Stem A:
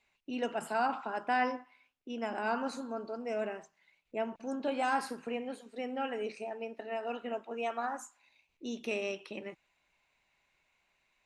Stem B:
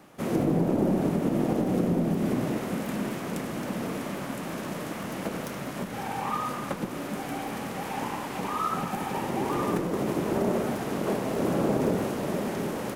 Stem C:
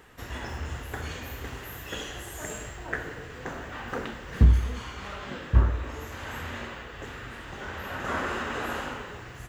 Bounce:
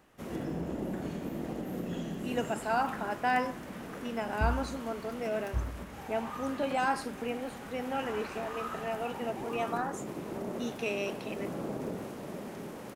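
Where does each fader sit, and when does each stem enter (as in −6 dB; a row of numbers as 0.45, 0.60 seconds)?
+1.5, −11.5, −13.5 decibels; 1.95, 0.00, 0.00 seconds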